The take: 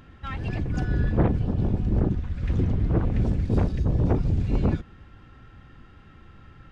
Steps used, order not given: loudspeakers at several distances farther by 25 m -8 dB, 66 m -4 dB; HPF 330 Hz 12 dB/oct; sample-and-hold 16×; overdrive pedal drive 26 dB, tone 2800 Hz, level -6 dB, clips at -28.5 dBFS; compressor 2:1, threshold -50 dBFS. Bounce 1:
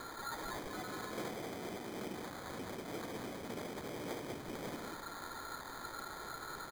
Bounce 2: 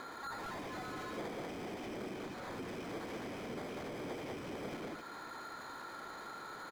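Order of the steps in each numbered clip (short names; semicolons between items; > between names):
overdrive pedal > HPF > compressor > loudspeakers at several distances > sample-and-hold; HPF > sample-and-hold > loudspeakers at several distances > overdrive pedal > compressor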